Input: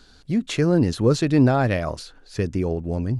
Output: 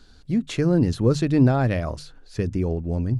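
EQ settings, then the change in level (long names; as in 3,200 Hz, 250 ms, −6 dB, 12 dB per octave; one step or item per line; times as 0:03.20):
low-shelf EQ 130 Hz +3.5 dB
low-shelf EQ 290 Hz +4.5 dB
mains-hum notches 50/100/150 Hz
−4.0 dB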